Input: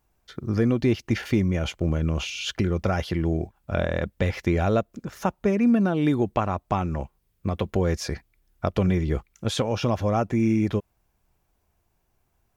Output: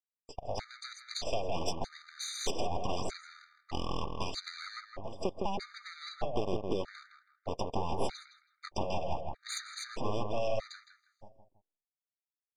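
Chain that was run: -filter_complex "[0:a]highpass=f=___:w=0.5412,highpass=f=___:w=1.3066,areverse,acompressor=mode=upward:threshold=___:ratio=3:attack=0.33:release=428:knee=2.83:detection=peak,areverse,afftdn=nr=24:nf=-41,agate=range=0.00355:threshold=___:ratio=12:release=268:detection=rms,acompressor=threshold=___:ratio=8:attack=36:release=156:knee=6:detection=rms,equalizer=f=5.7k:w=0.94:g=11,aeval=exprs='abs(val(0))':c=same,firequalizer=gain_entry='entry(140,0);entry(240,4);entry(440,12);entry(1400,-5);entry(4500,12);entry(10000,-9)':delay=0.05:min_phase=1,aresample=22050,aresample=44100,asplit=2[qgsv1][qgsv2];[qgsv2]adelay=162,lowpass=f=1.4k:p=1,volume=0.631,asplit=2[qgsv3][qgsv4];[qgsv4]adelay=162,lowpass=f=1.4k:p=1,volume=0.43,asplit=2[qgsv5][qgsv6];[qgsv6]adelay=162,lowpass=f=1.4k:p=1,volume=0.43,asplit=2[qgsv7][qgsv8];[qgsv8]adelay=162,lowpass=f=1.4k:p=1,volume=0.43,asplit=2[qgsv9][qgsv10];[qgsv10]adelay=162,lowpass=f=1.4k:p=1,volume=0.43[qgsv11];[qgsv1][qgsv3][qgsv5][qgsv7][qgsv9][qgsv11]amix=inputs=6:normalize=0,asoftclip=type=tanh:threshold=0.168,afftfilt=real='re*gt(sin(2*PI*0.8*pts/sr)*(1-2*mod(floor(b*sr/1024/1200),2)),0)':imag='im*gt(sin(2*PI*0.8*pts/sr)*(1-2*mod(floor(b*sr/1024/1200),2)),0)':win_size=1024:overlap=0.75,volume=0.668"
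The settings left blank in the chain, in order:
300, 300, 0.0178, 0.00178, 0.0447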